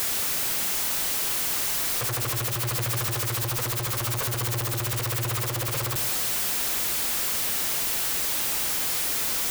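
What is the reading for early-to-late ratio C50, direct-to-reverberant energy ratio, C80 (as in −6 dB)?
12.5 dB, 11.0 dB, 14.5 dB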